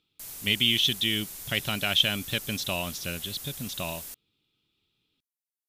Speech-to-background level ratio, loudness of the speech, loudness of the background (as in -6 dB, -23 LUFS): 11.5 dB, -27.0 LUFS, -38.5 LUFS